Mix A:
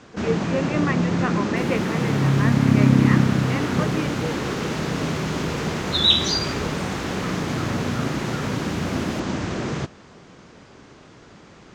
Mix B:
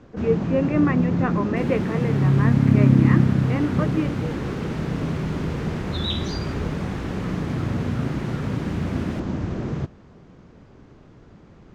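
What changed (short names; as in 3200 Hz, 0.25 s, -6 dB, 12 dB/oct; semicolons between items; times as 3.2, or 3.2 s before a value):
first sound -7.0 dB; master: add tilt -3 dB/oct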